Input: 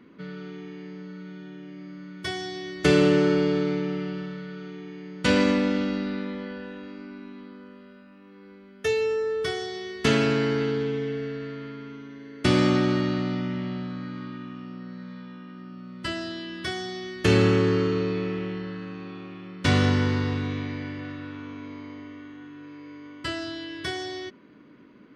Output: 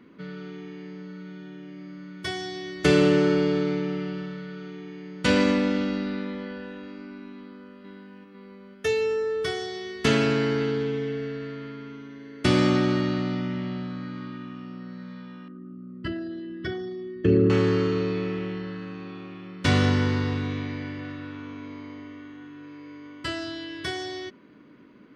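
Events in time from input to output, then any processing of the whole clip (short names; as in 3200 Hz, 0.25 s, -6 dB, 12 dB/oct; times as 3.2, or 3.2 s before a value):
7.34–7.74 echo throw 0.5 s, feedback 60%, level -2.5 dB
15.48–17.5 formant sharpening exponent 2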